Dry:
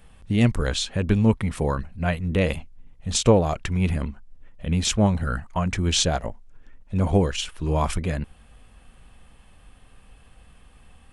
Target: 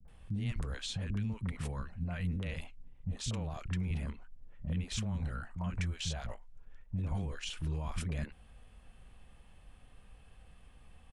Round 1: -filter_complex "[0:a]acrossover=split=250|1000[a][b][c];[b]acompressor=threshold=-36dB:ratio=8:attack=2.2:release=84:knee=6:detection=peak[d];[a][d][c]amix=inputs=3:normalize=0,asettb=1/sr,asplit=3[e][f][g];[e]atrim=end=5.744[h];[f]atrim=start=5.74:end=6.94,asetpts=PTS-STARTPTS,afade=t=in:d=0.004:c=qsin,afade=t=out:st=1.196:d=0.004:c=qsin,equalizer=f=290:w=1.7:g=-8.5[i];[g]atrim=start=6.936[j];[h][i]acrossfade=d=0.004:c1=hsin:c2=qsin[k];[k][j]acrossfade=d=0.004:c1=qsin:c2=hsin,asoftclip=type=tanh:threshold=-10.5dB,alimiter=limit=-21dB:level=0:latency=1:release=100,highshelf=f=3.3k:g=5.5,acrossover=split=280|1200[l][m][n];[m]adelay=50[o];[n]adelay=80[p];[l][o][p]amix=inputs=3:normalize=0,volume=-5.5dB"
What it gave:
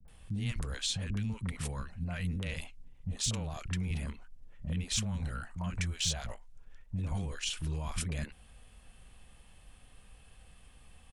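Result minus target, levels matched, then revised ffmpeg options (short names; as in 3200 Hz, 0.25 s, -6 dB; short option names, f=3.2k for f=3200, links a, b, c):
soft clip: distortion +13 dB; 8000 Hz band +7.5 dB
-filter_complex "[0:a]acrossover=split=250|1000[a][b][c];[b]acompressor=threshold=-36dB:ratio=8:attack=2.2:release=84:knee=6:detection=peak[d];[a][d][c]amix=inputs=3:normalize=0,asettb=1/sr,asplit=3[e][f][g];[e]atrim=end=5.744[h];[f]atrim=start=5.74:end=6.94,asetpts=PTS-STARTPTS,afade=t=in:d=0.004:c=qsin,afade=t=out:st=1.196:d=0.004:c=qsin,equalizer=f=290:w=1.7:g=-8.5[i];[g]atrim=start=6.936[j];[h][i]acrossfade=d=0.004:c1=hsin:c2=qsin[k];[k][j]acrossfade=d=0.004:c1=qsin:c2=hsin,asoftclip=type=tanh:threshold=-3dB,alimiter=limit=-21dB:level=0:latency=1:release=100,highshelf=f=3.3k:g=-5,acrossover=split=280|1200[l][m][n];[m]adelay=50[o];[n]adelay=80[p];[l][o][p]amix=inputs=3:normalize=0,volume=-5.5dB"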